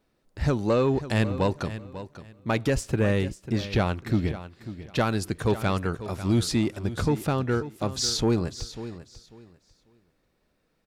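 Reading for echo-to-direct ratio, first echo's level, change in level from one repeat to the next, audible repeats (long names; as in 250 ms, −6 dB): −13.5 dB, −13.5 dB, −13.0 dB, 2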